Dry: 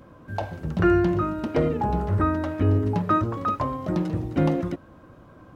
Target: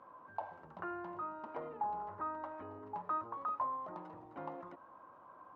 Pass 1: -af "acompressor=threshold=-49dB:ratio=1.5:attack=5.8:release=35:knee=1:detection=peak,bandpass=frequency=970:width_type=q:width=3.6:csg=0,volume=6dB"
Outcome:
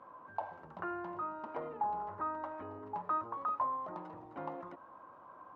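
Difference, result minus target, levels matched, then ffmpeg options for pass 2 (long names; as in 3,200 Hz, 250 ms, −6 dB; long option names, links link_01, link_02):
downward compressor: peak gain reduction −2.5 dB
-af "acompressor=threshold=-57dB:ratio=1.5:attack=5.8:release=35:knee=1:detection=peak,bandpass=frequency=970:width_type=q:width=3.6:csg=0,volume=6dB"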